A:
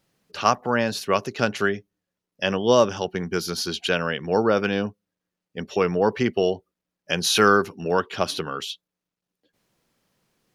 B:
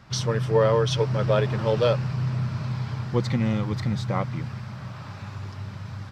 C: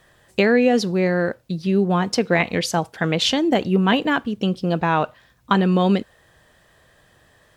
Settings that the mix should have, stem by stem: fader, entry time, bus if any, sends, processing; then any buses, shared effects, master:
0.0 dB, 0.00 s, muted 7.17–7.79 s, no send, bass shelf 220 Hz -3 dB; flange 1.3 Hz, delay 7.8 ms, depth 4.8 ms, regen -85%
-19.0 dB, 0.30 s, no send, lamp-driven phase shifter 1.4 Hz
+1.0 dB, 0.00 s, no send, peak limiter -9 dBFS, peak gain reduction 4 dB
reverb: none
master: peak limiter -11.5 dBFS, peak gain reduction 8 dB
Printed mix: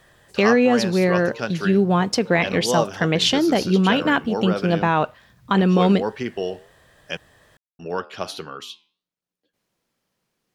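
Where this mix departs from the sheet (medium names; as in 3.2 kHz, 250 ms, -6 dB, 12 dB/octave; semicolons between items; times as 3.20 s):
stem B: entry 0.30 s -> 0.60 s; master: missing peak limiter -11.5 dBFS, peak gain reduction 8 dB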